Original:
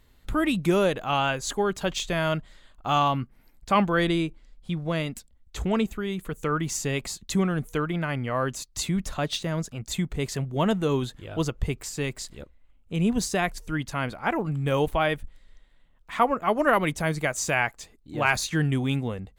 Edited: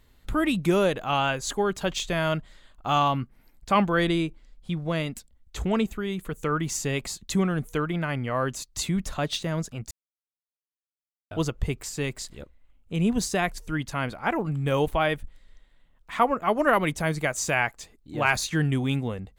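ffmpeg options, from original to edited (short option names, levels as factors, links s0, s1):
-filter_complex "[0:a]asplit=3[s0][s1][s2];[s0]atrim=end=9.91,asetpts=PTS-STARTPTS,afade=t=out:st=9.906:d=0.004:c=hsin[s3];[s1]atrim=start=9.91:end=11.31,asetpts=PTS-STARTPTS,volume=0[s4];[s2]atrim=start=11.31,asetpts=PTS-STARTPTS,afade=t=in:d=0.004:c=hsin[s5];[s3][s4][s5]concat=n=3:v=0:a=1"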